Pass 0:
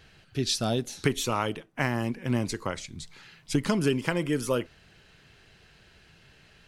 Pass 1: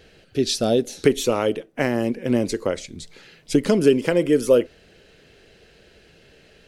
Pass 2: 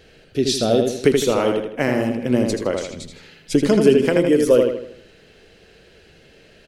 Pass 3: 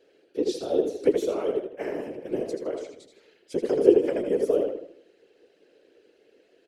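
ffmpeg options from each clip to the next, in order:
ffmpeg -i in.wav -af "equalizer=frequency=125:width_type=o:width=1:gain=-5,equalizer=frequency=250:width_type=o:width=1:gain=3,equalizer=frequency=500:width_type=o:width=1:gain=11,equalizer=frequency=1000:width_type=o:width=1:gain=-7,volume=3.5dB" out.wav
ffmpeg -i in.wav -filter_complex "[0:a]asplit=2[link_01][link_02];[link_02]adelay=80,lowpass=frequency=4900:poles=1,volume=-4dB,asplit=2[link_03][link_04];[link_04]adelay=80,lowpass=frequency=4900:poles=1,volume=0.44,asplit=2[link_05][link_06];[link_06]adelay=80,lowpass=frequency=4900:poles=1,volume=0.44,asplit=2[link_07][link_08];[link_08]adelay=80,lowpass=frequency=4900:poles=1,volume=0.44,asplit=2[link_09][link_10];[link_10]adelay=80,lowpass=frequency=4900:poles=1,volume=0.44,asplit=2[link_11][link_12];[link_12]adelay=80,lowpass=frequency=4900:poles=1,volume=0.44[link_13];[link_01][link_03][link_05][link_07][link_09][link_11][link_13]amix=inputs=7:normalize=0,volume=1dB" out.wav
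ffmpeg -i in.wav -af "highpass=frequency=400:width_type=q:width=4.9,afftfilt=real='hypot(re,im)*cos(2*PI*random(0))':imag='hypot(re,im)*sin(2*PI*random(1))':win_size=512:overlap=0.75,volume=-11dB" out.wav

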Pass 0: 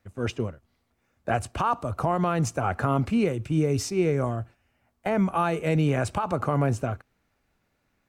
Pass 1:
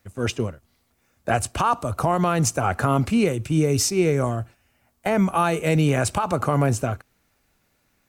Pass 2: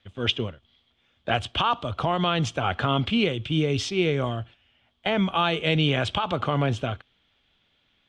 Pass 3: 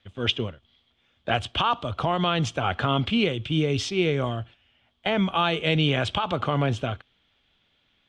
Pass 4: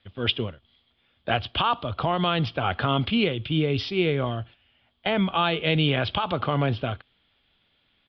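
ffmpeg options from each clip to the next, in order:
ffmpeg -i in.wav -af "highshelf=frequency=4600:gain=11,volume=3.5dB" out.wav
ffmpeg -i in.wav -af "lowpass=frequency=3300:width_type=q:width=13,volume=-4dB" out.wav
ffmpeg -i in.wav -af anull out.wav
ffmpeg -i in.wav -af "aresample=11025,aresample=44100" out.wav

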